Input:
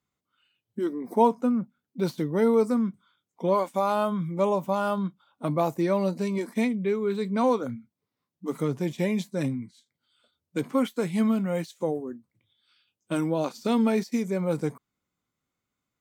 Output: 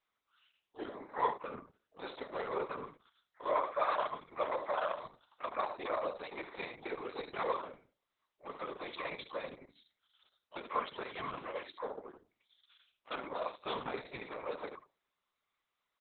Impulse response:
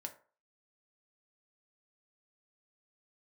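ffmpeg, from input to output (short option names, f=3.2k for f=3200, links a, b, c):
-filter_complex "[0:a]aderivative,bandreject=f=50:t=h:w=6,bandreject=f=100:t=h:w=6,bandreject=f=150:t=h:w=6,bandreject=f=200:t=h:w=6,bandreject=f=250:t=h:w=6,bandreject=f=300:t=h:w=6,bandreject=f=350:t=h:w=6,bandreject=f=400:t=h:w=6,asplit=2[a][b];[1:a]atrim=start_sample=2205,lowpass=2.6k[c];[b][c]afir=irnorm=-1:irlink=0,volume=-9.5dB[d];[a][d]amix=inputs=2:normalize=0,asplit=2[e][f];[f]asetrate=88200,aresample=44100,atempo=0.5,volume=-9dB[g];[e][g]amix=inputs=2:normalize=0,highpass=270,equalizer=f=400:t=q:w=4:g=5,equalizer=f=590:t=q:w=4:g=8,equalizer=f=1.1k:t=q:w=4:g=10,equalizer=f=2.7k:t=q:w=4:g=-5,lowpass=f=3.6k:w=0.5412,lowpass=f=3.6k:w=1.3066,aecho=1:1:72:0.282,asplit=2[h][i];[i]acompressor=threshold=-51dB:ratio=12,volume=2dB[j];[h][j]amix=inputs=2:normalize=0,afftfilt=real='hypot(re,im)*cos(2*PI*random(0))':imag='hypot(re,im)*sin(2*PI*random(1))':win_size=512:overlap=0.75,acrusher=bits=9:mode=log:mix=0:aa=0.000001,volume=8dB" -ar 48000 -c:a libopus -b:a 6k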